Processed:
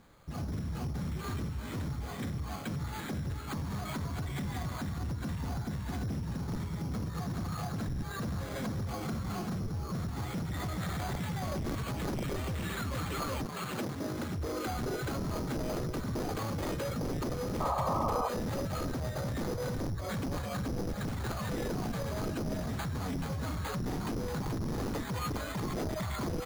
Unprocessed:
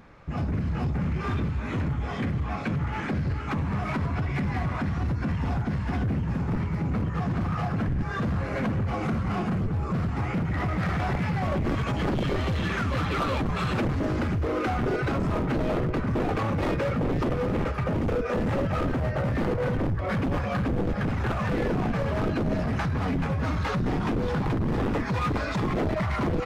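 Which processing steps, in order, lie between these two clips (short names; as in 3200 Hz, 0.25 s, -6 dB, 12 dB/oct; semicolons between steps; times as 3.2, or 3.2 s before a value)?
13.45–14.36 HPF 210 Hz -> 91 Hz 12 dB/oct; sample-and-hold 8×; 17.6–18.29 painted sound noise 530–1300 Hz -24 dBFS; gain -8.5 dB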